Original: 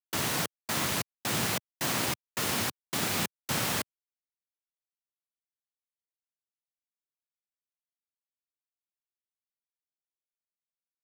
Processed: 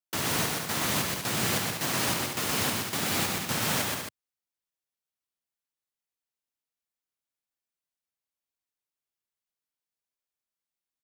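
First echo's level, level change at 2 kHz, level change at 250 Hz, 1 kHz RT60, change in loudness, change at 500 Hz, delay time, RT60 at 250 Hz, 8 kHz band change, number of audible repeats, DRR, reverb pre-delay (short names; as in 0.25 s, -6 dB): -3.0 dB, +2.5 dB, +3.0 dB, none, +2.5 dB, +3.0 dB, 0.125 s, none, +3.0 dB, 3, none, none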